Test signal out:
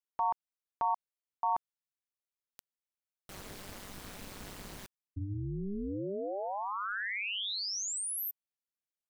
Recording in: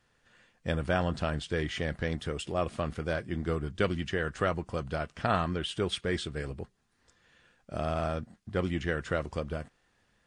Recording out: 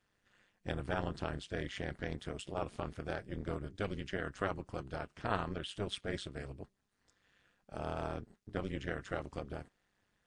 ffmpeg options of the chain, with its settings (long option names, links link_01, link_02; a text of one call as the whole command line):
ffmpeg -i in.wav -af "tremolo=f=200:d=0.947,volume=-4dB" out.wav